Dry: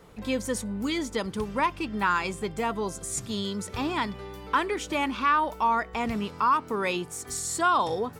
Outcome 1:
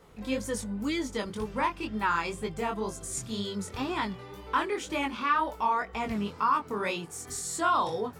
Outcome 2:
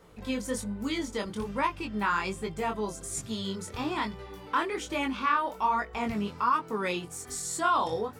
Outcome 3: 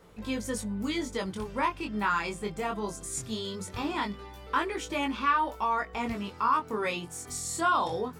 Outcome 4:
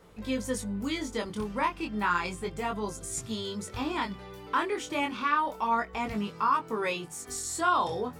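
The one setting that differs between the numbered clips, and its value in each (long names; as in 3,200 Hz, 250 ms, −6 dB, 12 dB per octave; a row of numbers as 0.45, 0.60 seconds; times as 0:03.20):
chorus effect, speed: 2, 1.2, 0.2, 0.3 Hertz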